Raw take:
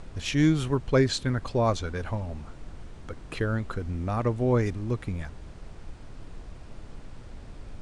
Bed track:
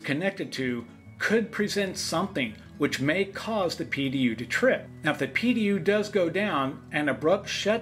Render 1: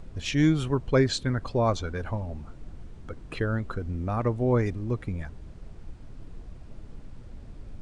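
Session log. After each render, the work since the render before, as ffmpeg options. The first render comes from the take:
ffmpeg -i in.wav -af "afftdn=noise_reduction=7:noise_floor=-45" out.wav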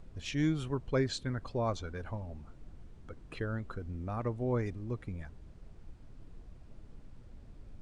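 ffmpeg -i in.wav -af "volume=-8.5dB" out.wav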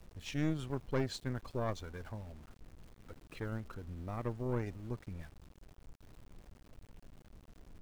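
ffmpeg -i in.wav -af "aeval=exprs='(tanh(20*val(0)+0.8)-tanh(0.8))/20':channel_layout=same,aeval=exprs='val(0)*gte(abs(val(0)),0.00188)':channel_layout=same" out.wav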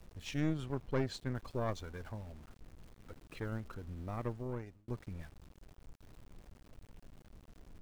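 ffmpeg -i in.wav -filter_complex "[0:a]asettb=1/sr,asplit=3[link_01][link_02][link_03];[link_01]atrim=end=0.404[link_04];[link_02]atrim=start=0.4:end=1.35,asetpts=PTS-STARTPTS,afade=type=in:duration=0.004:curve=qsin,afade=type=out:start_time=0.946:duration=0.004:curve=qsin,highshelf=frequency=4800:gain=-5[link_05];[link_03]atrim=start=1.346[link_06];[link_04][link_05]acrossfade=duration=0.004:curve1=hsin:curve2=qsin[link_07];[link_07][link_06]acrossfade=duration=0.004:curve1=qsin:curve2=hsin,asplit=2[link_08][link_09];[link_08]atrim=end=4.88,asetpts=PTS-STARTPTS,afade=type=out:start_time=4.23:duration=0.65[link_10];[link_09]atrim=start=4.88,asetpts=PTS-STARTPTS,afade=type=in:duration=0.004:curve=hsin[link_11];[link_10][link_11]concat=n=2:v=0:a=1" out.wav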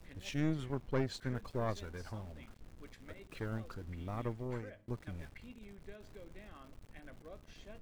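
ffmpeg -i in.wav -i bed.wav -filter_complex "[1:a]volume=-30dB[link_01];[0:a][link_01]amix=inputs=2:normalize=0" out.wav

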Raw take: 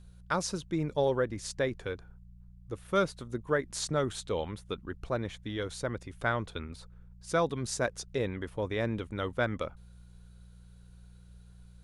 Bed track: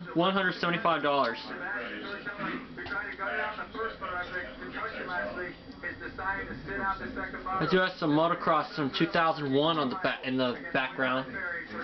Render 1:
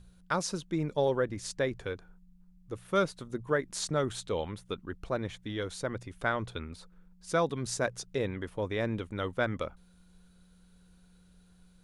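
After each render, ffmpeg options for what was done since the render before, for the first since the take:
ffmpeg -i in.wav -af "bandreject=frequency=60:width_type=h:width=4,bandreject=frequency=120:width_type=h:width=4" out.wav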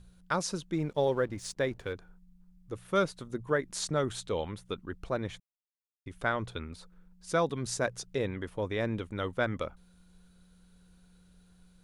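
ffmpeg -i in.wav -filter_complex "[0:a]asettb=1/sr,asplit=3[link_01][link_02][link_03];[link_01]atrim=end=0.734[link_04];[link_02]atrim=start=0.73:end=1.93,asetpts=PTS-STARTPTS,afade=type=in:duration=0.004:curve=qsin,afade=type=out:start_time=1.196:duration=0.004:curve=qsin,aeval=exprs='sgn(val(0))*max(abs(val(0))-0.00133,0)':channel_layout=same[link_05];[link_03]atrim=start=1.926[link_06];[link_04][link_05]acrossfade=duration=0.004:curve1=hsin:curve2=qsin[link_07];[link_07][link_06]acrossfade=duration=0.004:curve1=qsin:curve2=hsin,asplit=3[link_08][link_09][link_10];[link_08]atrim=end=5.4,asetpts=PTS-STARTPTS,afade=type=out:start_time=5.396:duration=0.004:curve=hsin[link_11];[link_09]atrim=start=5.4:end=6.06,asetpts=PTS-STARTPTS,volume=0[link_12];[link_10]atrim=start=6.06,asetpts=PTS-STARTPTS,afade=type=in:duration=0.004:curve=hsin[link_13];[link_11][link_12][link_13]concat=n=3:v=0:a=1" out.wav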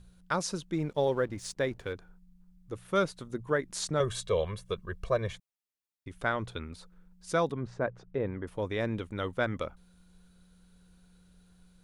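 ffmpeg -i in.wav -filter_complex "[0:a]asettb=1/sr,asplit=3[link_01][link_02][link_03];[link_01]atrim=end=4.004[link_04];[link_02]atrim=start=4:end=5.33,asetpts=PTS-STARTPTS,afade=type=in:duration=0.004:curve=qsin,afade=type=out:start_time=1.326:duration=0.004:curve=qsin,aecho=1:1:1.8:0.99,atrim=end_sample=58653[link_05];[link_03]atrim=start=5.326[link_06];[link_04][link_05]acrossfade=duration=0.004:curve1=hsin:curve2=qsin[link_07];[link_07][link_06]acrossfade=duration=0.004:curve1=qsin:curve2=hsin,asplit=3[link_08][link_09][link_10];[link_08]afade=type=out:start_time=7.51:duration=0.02[link_11];[link_09]lowpass=1500,afade=type=in:start_time=7.51:duration=0.02,afade=type=out:start_time=8.46:duration=0.02[link_12];[link_10]afade=type=in:start_time=8.46:duration=0.02[link_13];[link_11][link_12][link_13]amix=inputs=3:normalize=0" out.wav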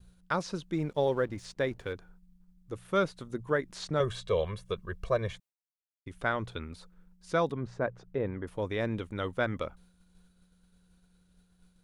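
ffmpeg -i in.wav -filter_complex "[0:a]acrossover=split=4700[link_01][link_02];[link_02]acompressor=threshold=-54dB:ratio=4:attack=1:release=60[link_03];[link_01][link_03]amix=inputs=2:normalize=0,agate=range=-33dB:threshold=-54dB:ratio=3:detection=peak" out.wav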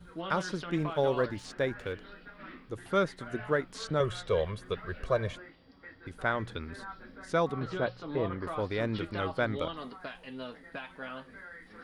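ffmpeg -i in.wav -i bed.wav -filter_complex "[1:a]volume=-13dB[link_01];[0:a][link_01]amix=inputs=2:normalize=0" out.wav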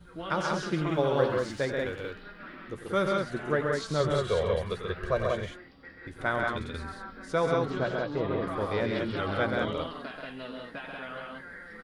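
ffmpeg -i in.wav -filter_complex "[0:a]asplit=2[link_01][link_02];[link_02]adelay=14,volume=-12dB[link_03];[link_01][link_03]amix=inputs=2:normalize=0,aecho=1:1:93.29|134.1|183.7:0.282|0.631|0.708" out.wav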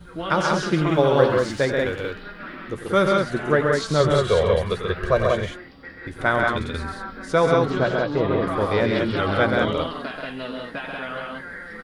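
ffmpeg -i in.wav -af "volume=8.5dB" out.wav

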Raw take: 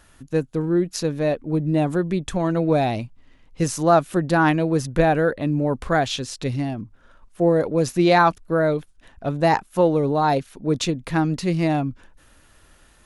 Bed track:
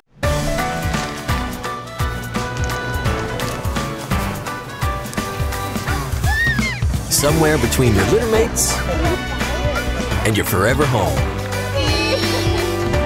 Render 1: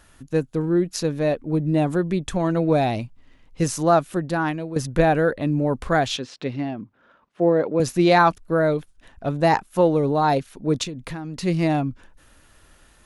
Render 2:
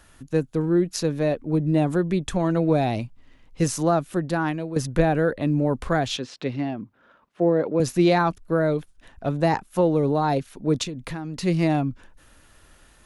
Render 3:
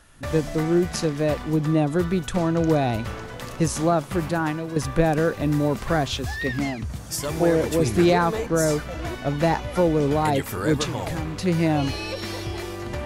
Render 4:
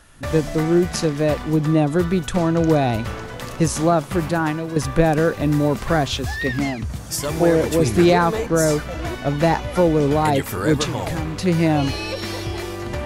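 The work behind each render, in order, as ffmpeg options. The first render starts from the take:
ffmpeg -i in.wav -filter_complex "[0:a]asettb=1/sr,asplit=3[link_01][link_02][link_03];[link_01]atrim=end=6.174[link_04];[link_02]atrim=start=6.17:end=7.8,asetpts=PTS-STARTPTS,afade=type=in:duration=0.004:curve=qsin,afade=type=out:start_time=1.626:duration=0.004:curve=qsin,highpass=180,lowpass=3400[link_05];[link_03]atrim=start=7.796[link_06];[link_04][link_05]acrossfade=duration=0.004:curve1=hsin:curve2=qsin[link_07];[link_07][link_06]acrossfade=duration=0.004:curve1=qsin:curve2=hsin,asettb=1/sr,asplit=3[link_08][link_09][link_10];[link_08]atrim=end=10.834[link_11];[link_09]atrim=start=10.83:end=11.43,asetpts=PTS-STARTPTS,afade=type=in:duration=0.004:curve=qsin,afade=type=out:start_time=0.596:duration=0.004:curve=qsin,acompressor=threshold=-27dB:ratio=16:attack=3.2:release=140:knee=1:detection=peak[link_12];[link_10]atrim=start=11.426[link_13];[link_11][link_12]acrossfade=duration=0.004:curve1=hsin:curve2=qsin[link_14];[link_14][link_13]acrossfade=duration=0.004:curve1=qsin:curve2=hsin,asplit=2[link_15][link_16];[link_15]atrim=end=4.76,asetpts=PTS-STARTPTS,afade=type=out:start_time=3.74:duration=1.02:silence=0.266073[link_17];[link_16]atrim=start=4.76,asetpts=PTS-STARTPTS,afade=type=in:duration=0.004:curve=hsin:silence=0.266073[link_18];[link_17][link_18]concat=n=2:v=0:a=1" out.wav
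ffmpeg -i in.wav -filter_complex "[0:a]acrossover=split=390[link_01][link_02];[link_02]acompressor=threshold=-24dB:ratio=2[link_03];[link_01][link_03]amix=inputs=2:normalize=0" out.wav
ffmpeg -i in.wav -i bed.wav -filter_complex "[1:a]volume=-13dB[link_01];[0:a][link_01]amix=inputs=2:normalize=0" out.wav
ffmpeg -i in.wav -af "volume=3.5dB" out.wav

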